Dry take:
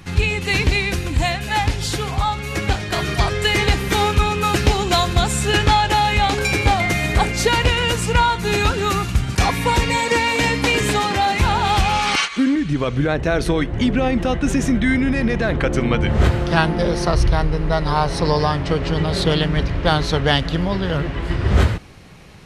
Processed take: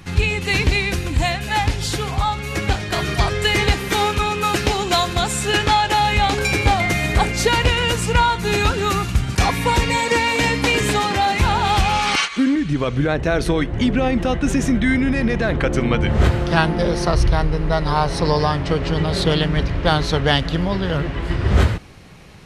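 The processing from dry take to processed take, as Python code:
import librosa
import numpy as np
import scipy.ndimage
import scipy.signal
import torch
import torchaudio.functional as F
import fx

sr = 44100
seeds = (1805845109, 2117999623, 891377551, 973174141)

y = fx.low_shelf(x, sr, hz=140.0, db=-8.5, at=(3.73, 6.0))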